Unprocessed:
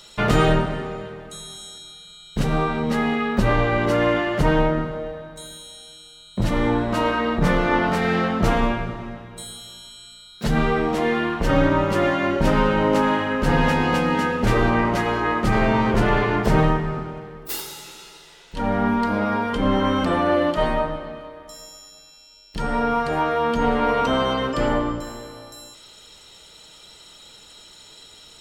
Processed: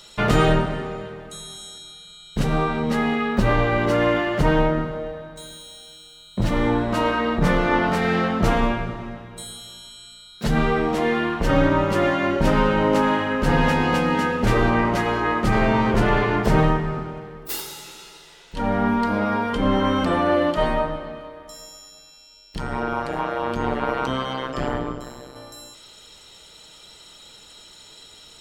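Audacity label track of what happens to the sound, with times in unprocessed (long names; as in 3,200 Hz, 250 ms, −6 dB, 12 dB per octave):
3.390000	6.840000	running median over 3 samples
22.580000	25.360000	amplitude modulation modulator 130 Hz, depth 95%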